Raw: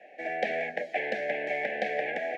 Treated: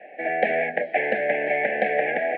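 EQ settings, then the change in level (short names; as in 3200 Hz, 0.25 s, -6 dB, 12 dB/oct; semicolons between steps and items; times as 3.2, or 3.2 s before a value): LPF 2600 Hz 24 dB/oct; +8.0 dB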